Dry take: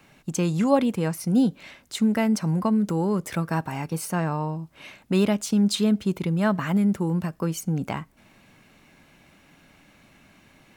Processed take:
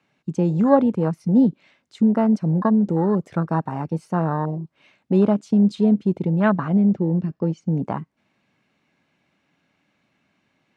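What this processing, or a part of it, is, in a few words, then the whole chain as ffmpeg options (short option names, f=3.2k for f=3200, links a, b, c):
over-cleaned archive recording: -filter_complex "[0:a]asettb=1/sr,asplit=3[a][b][c];[a]atrim=end=6.404[d];[b]atrim=start=6.4:end=7.67,asetpts=PTS-STARTPTS,afade=t=in:d=0.004:c=qsin,afade=t=out:st=1.266:d=0.004:c=qsin,lowpass=f=6.2k:w=0.5412,lowpass=f=6.2k:w=1.3066[e];[c]atrim=start=7.666[f];[d][e]acrossfade=d=0.004:c1=hsin:c2=qsin[g];[g][f]acrossfade=d=0.004:c1=qsin:c2=hsin,highpass=110,lowpass=5.7k,afwtdn=0.0355,volume=4.5dB"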